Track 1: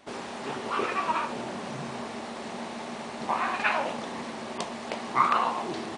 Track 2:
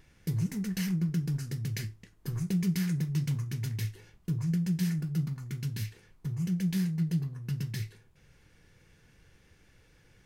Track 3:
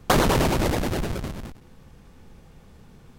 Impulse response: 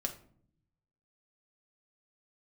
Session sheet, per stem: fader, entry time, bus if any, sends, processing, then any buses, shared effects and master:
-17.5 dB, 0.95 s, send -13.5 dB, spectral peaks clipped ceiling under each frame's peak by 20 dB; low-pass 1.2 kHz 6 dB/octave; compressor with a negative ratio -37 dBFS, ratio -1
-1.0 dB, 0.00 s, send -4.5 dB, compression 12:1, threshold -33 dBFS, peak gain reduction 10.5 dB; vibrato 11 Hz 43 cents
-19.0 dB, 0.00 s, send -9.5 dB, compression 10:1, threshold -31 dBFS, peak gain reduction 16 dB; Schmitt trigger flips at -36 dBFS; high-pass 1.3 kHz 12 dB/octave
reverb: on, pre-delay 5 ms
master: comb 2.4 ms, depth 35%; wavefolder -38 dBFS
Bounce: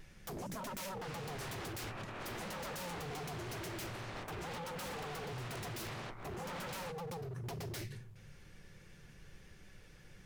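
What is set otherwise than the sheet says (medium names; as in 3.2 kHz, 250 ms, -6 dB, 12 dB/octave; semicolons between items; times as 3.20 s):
stem 1 -17.5 dB -> -9.0 dB; stem 3: muted; master: missing comb 2.4 ms, depth 35%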